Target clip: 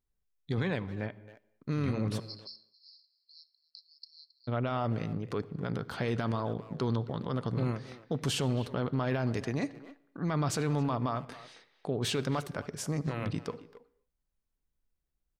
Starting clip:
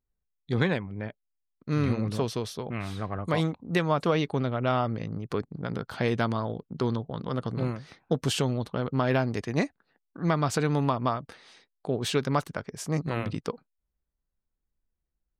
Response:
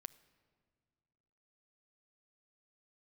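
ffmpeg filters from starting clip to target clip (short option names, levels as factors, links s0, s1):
-filter_complex "[0:a]asplit=3[s0][s1][s2];[s0]afade=t=out:st=2.18:d=0.02[s3];[s1]asuperpass=centerf=4700:order=20:qfactor=3.6,afade=t=in:st=2.18:d=0.02,afade=t=out:st=4.47:d=0.02[s4];[s2]afade=t=in:st=4.47:d=0.02[s5];[s3][s4][s5]amix=inputs=3:normalize=0,alimiter=limit=0.0794:level=0:latency=1:release=26,asplit=2[s6][s7];[s7]adelay=270,highpass=300,lowpass=3400,asoftclip=type=hard:threshold=0.0299,volume=0.2[s8];[s6][s8]amix=inputs=2:normalize=0[s9];[1:a]atrim=start_sample=2205,afade=t=out:st=0.32:d=0.01,atrim=end_sample=14553[s10];[s9][s10]afir=irnorm=-1:irlink=0,volume=1.78"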